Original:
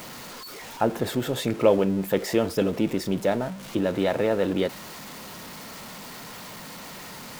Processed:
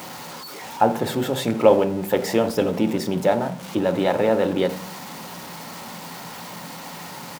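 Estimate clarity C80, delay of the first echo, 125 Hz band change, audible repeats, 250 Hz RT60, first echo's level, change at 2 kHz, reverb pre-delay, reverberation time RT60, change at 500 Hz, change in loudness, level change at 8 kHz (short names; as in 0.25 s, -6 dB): 18.0 dB, 85 ms, +2.0 dB, 1, 0.80 s, -20.0 dB, +3.0 dB, 4 ms, 0.45 s, +4.0 dB, +3.5 dB, +2.5 dB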